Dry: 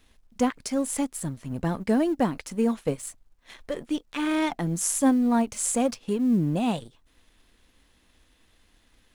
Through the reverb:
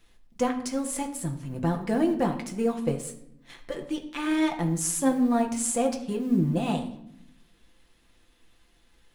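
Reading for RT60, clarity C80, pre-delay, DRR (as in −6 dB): 0.75 s, 12.5 dB, 6 ms, 1.5 dB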